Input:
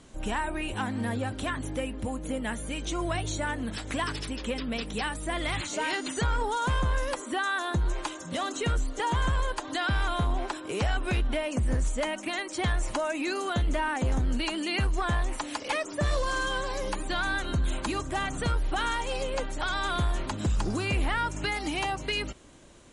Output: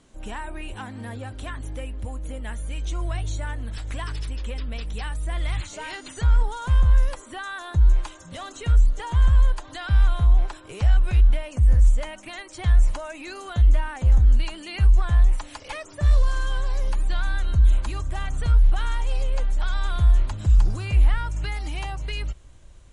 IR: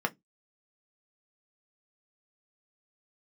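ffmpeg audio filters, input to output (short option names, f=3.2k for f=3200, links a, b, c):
-af "asubboost=boost=10:cutoff=79,volume=-4.5dB"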